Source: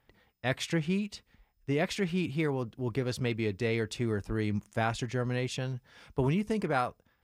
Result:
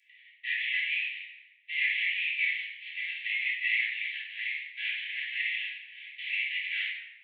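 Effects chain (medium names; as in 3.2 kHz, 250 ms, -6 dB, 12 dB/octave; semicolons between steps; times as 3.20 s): CVSD coder 16 kbps; steep high-pass 1.9 kHz 96 dB/octave; simulated room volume 400 m³, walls mixed, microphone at 3 m; trim +7 dB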